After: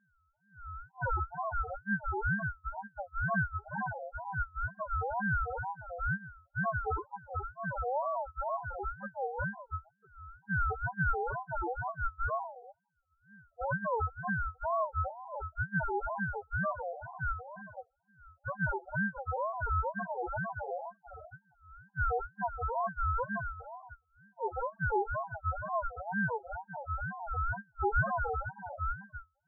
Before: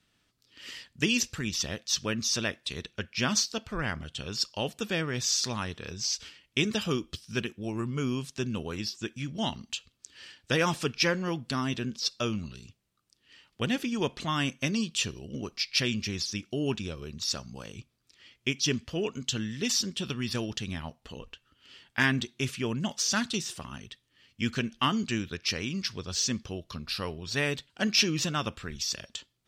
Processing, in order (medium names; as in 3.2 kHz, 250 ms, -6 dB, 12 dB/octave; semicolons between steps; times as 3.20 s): sorted samples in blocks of 64 samples; in parallel at +2.5 dB: peak limiter -22.5 dBFS, peak gain reduction 11 dB; on the sum: loudest bins only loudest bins 1; ring modulator with a swept carrier 750 Hz, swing 20%, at 2.1 Hz; trim +3 dB